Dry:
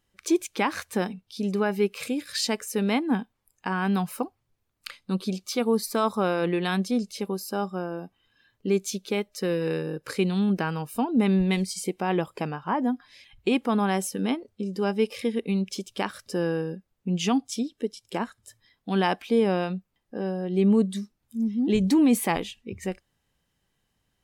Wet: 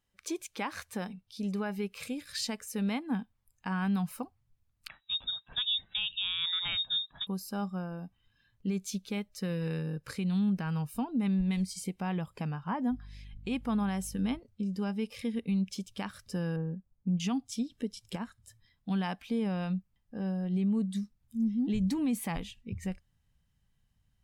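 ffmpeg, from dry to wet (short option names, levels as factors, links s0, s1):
-filter_complex "[0:a]asettb=1/sr,asplit=3[s0][s1][s2];[s0]atrim=end=4.884[s3];[s1]atrim=start=4.88:end=7.27,asetpts=PTS-STARTPTS,afade=t=in:d=0.004:c=qsin,afade=t=out:st=2.386:d=0.004:c=qsin,lowpass=f=3300:t=q:w=0.5098,lowpass=f=3300:t=q:w=0.6013,lowpass=f=3300:t=q:w=0.9,lowpass=f=3300:t=q:w=2.563,afreqshift=-3900[s4];[s2]atrim=start=7.266[s5];[s3][s4]acrossfade=d=0.004:c1=hsin:c2=qsin[s6];[s6][s5]acrossfade=d=0.004:c1=qsin:c2=hsin,asettb=1/sr,asplit=3[s7][s8][s9];[s7]atrim=end=12.914[s10];[s8]atrim=start=12.91:end=14.39,asetpts=PTS-STARTPTS,afade=t=in:d=0.004:c=qsin,afade=t=out:st=1.476:d=0.004:c=qsin,aeval=exprs='val(0)+0.00282*(sin(2*PI*50*n/s)+sin(2*PI*2*50*n/s)/2+sin(2*PI*3*50*n/s)/3+sin(2*PI*4*50*n/s)/4+sin(2*PI*5*50*n/s)/5)':c=same[s11];[s9]atrim=start=14.386[s12];[s10][s11]acrossfade=d=0.004:c1=hsin:c2=qsin[s13];[s13][s12]acrossfade=d=0.004:c1=qsin:c2=hsin,asettb=1/sr,asplit=3[s14][s15][s16];[s14]atrim=end=16.564[s17];[s15]atrim=start=16.56:end=17.2,asetpts=PTS-STARTPTS,afade=t=in:d=0.004:c=qsin,afade=t=out:st=0.636:d=0.004:c=qsin,lowpass=1100[s18];[s16]atrim=start=17.196[s19];[s17][s18]acrossfade=d=0.004:c1=hsin:c2=qsin[s20];[s20][s19]acrossfade=d=0.004:c1=qsin:c2=hsin,asplit=3[s21][s22][s23];[s21]atrim=end=17.702[s24];[s22]atrim=start=17.698:end=18.162,asetpts=PTS-STARTPTS,volume=2[s25];[s23]atrim=start=18.158[s26];[s24][s25]acrossfade=d=0.004:c1=hsin:c2=hsin[s27];[s27][s26]acrossfade=d=0.004:c1=hsin:c2=hsin,asubboost=boost=4.5:cutoff=180,alimiter=limit=0.168:level=0:latency=1:release=163,equalizer=f=350:t=o:w=0.43:g=-6,volume=0.447"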